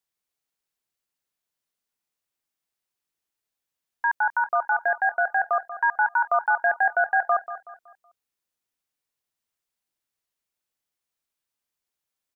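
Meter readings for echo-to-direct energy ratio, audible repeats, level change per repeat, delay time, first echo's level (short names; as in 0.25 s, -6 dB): -12.5 dB, 3, -8.5 dB, 0.187 s, -13.0 dB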